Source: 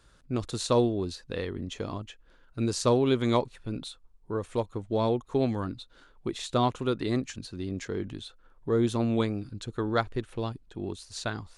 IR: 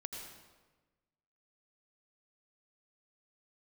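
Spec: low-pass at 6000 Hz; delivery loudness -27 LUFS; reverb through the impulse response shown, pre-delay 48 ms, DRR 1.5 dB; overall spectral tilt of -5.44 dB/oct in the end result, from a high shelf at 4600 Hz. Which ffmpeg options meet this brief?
-filter_complex "[0:a]lowpass=6k,highshelf=f=4.6k:g=8,asplit=2[a][b];[1:a]atrim=start_sample=2205,adelay=48[c];[b][c]afir=irnorm=-1:irlink=0,volume=0dB[d];[a][d]amix=inputs=2:normalize=0,volume=0.5dB"

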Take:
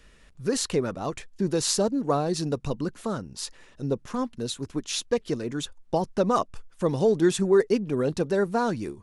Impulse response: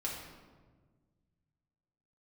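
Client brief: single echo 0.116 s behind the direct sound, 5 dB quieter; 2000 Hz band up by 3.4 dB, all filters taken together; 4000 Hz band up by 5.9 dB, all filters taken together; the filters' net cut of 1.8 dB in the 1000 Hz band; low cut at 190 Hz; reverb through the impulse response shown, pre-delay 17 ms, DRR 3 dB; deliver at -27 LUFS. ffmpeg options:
-filter_complex "[0:a]highpass=190,equalizer=f=1k:t=o:g=-4,equalizer=f=2k:t=o:g=5,equalizer=f=4k:t=o:g=6,aecho=1:1:116:0.562,asplit=2[a][b];[1:a]atrim=start_sample=2205,adelay=17[c];[b][c]afir=irnorm=-1:irlink=0,volume=-5.5dB[d];[a][d]amix=inputs=2:normalize=0,volume=-3dB"

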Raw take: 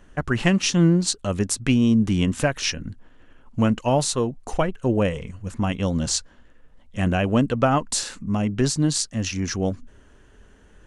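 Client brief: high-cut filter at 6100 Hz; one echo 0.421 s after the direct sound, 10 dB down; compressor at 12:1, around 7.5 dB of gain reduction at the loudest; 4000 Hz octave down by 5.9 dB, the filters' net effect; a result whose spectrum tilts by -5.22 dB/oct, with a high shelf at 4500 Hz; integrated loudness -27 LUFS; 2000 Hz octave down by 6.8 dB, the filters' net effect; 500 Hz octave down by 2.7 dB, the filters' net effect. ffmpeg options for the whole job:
-af "lowpass=6.1k,equalizer=f=500:t=o:g=-3,equalizer=f=2k:t=o:g=-8,equalizer=f=4k:t=o:g=-6.5,highshelf=f=4.5k:g=3.5,acompressor=threshold=-22dB:ratio=12,aecho=1:1:421:0.316,volume=1.5dB"

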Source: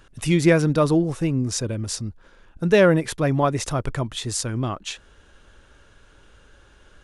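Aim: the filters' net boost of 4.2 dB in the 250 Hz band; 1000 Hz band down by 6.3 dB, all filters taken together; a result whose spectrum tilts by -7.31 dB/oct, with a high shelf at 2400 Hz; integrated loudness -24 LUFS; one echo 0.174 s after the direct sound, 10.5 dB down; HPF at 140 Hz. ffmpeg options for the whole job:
-af "highpass=140,equalizer=f=250:t=o:g=8,equalizer=f=1k:t=o:g=-8.5,highshelf=f=2.4k:g=-4.5,aecho=1:1:174:0.299,volume=-4dB"

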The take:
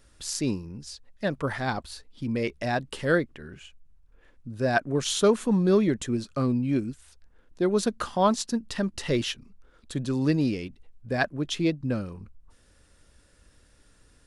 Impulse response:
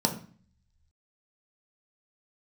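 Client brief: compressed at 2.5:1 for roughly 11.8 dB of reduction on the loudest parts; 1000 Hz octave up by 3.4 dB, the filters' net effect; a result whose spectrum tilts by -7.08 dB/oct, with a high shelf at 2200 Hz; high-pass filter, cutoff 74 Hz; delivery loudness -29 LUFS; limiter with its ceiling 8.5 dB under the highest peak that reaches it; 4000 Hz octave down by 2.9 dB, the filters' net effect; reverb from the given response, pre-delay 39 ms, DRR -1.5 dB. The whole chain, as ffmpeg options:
-filter_complex "[0:a]highpass=74,equalizer=f=1k:t=o:g=4,highshelf=f=2.2k:g=4.5,equalizer=f=4k:t=o:g=-8.5,acompressor=threshold=-33dB:ratio=2.5,alimiter=level_in=1dB:limit=-24dB:level=0:latency=1,volume=-1dB,asplit=2[a][b];[1:a]atrim=start_sample=2205,adelay=39[c];[b][c]afir=irnorm=-1:irlink=0,volume=-8.5dB[d];[a][d]amix=inputs=2:normalize=0,volume=-1.5dB"

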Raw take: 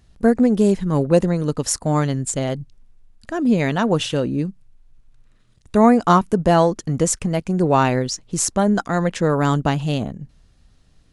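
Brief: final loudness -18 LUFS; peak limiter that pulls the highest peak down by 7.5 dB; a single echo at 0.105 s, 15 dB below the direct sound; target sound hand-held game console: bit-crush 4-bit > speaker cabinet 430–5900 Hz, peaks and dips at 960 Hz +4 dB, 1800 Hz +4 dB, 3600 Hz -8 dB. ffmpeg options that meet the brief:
-af "alimiter=limit=-9.5dB:level=0:latency=1,aecho=1:1:105:0.178,acrusher=bits=3:mix=0:aa=0.000001,highpass=430,equalizer=f=960:t=q:w=4:g=4,equalizer=f=1.8k:t=q:w=4:g=4,equalizer=f=3.6k:t=q:w=4:g=-8,lowpass=f=5.9k:w=0.5412,lowpass=f=5.9k:w=1.3066,volume=5.5dB"

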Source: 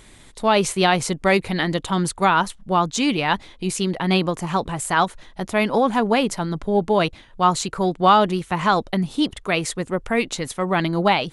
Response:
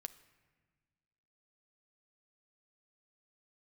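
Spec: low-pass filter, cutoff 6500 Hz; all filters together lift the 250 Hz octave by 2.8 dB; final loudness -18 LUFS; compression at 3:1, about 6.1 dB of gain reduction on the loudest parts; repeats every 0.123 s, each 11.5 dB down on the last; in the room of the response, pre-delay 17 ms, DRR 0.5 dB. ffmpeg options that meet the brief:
-filter_complex "[0:a]lowpass=6.5k,equalizer=f=250:t=o:g=4,acompressor=threshold=-18dB:ratio=3,aecho=1:1:123|246|369:0.266|0.0718|0.0194,asplit=2[a][b];[1:a]atrim=start_sample=2205,adelay=17[c];[b][c]afir=irnorm=-1:irlink=0,volume=3.5dB[d];[a][d]amix=inputs=2:normalize=0,volume=2dB"

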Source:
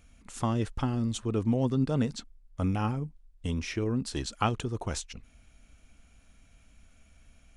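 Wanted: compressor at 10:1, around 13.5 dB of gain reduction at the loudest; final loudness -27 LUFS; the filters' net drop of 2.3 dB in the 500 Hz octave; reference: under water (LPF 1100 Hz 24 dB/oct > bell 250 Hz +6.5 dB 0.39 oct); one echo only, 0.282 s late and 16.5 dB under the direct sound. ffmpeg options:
-af "equalizer=f=500:t=o:g=-3.5,acompressor=threshold=-36dB:ratio=10,lowpass=f=1.1k:w=0.5412,lowpass=f=1.1k:w=1.3066,equalizer=f=250:t=o:w=0.39:g=6.5,aecho=1:1:282:0.15,volume=13dB"

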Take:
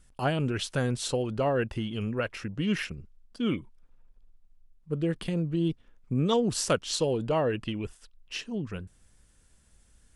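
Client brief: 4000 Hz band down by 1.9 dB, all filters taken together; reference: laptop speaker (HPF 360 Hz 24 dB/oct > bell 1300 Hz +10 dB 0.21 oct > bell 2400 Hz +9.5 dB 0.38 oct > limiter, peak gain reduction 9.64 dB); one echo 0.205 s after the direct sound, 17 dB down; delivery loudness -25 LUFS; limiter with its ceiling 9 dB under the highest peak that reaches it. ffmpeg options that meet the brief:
-af "equalizer=f=4k:t=o:g=-5,alimiter=limit=-22.5dB:level=0:latency=1,highpass=f=360:w=0.5412,highpass=f=360:w=1.3066,equalizer=f=1.3k:t=o:w=0.21:g=10,equalizer=f=2.4k:t=o:w=0.38:g=9.5,aecho=1:1:205:0.141,volume=12.5dB,alimiter=limit=-14dB:level=0:latency=1"

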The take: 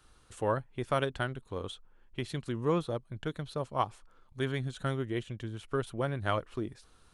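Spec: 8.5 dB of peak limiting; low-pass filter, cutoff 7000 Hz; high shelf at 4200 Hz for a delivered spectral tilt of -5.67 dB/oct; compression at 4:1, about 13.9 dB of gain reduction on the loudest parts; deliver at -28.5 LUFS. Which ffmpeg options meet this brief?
-af "lowpass=7k,highshelf=f=4.2k:g=-3.5,acompressor=threshold=-41dB:ratio=4,volume=20dB,alimiter=limit=-16dB:level=0:latency=1"

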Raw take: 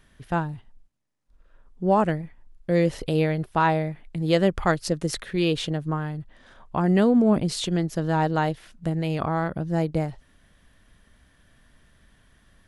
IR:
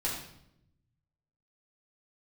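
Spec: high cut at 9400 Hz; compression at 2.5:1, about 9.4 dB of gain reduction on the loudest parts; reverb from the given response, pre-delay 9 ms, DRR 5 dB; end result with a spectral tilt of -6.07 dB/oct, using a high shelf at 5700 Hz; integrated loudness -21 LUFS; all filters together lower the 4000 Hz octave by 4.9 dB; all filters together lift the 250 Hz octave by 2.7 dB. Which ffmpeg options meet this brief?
-filter_complex "[0:a]lowpass=9.4k,equalizer=f=250:t=o:g=4,equalizer=f=4k:t=o:g=-5,highshelf=f=5.7k:g=-3.5,acompressor=threshold=-26dB:ratio=2.5,asplit=2[a][b];[1:a]atrim=start_sample=2205,adelay=9[c];[b][c]afir=irnorm=-1:irlink=0,volume=-10.5dB[d];[a][d]amix=inputs=2:normalize=0,volume=7dB"

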